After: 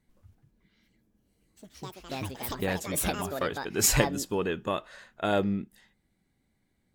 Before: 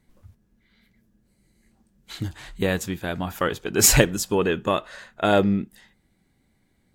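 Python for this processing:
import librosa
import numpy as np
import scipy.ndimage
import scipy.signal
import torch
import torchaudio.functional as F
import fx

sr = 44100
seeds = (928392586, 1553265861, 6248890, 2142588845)

y = fx.echo_pitch(x, sr, ms=261, semitones=6, count=2, db_per_echo=-6.0)
y = y * 10.0 ** (-7.5 / 20.0)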